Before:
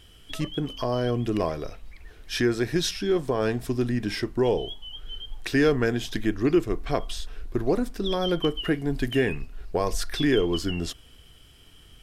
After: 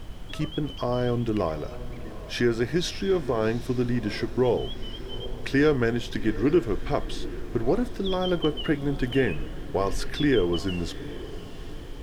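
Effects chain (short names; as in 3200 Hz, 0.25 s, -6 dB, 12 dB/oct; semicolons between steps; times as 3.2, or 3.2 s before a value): high shelf 6100 Hz -9.5 dB; added noise brown -37 dBFS; on a send: diffused feedback echo 0.783 s, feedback 48%, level -16 dB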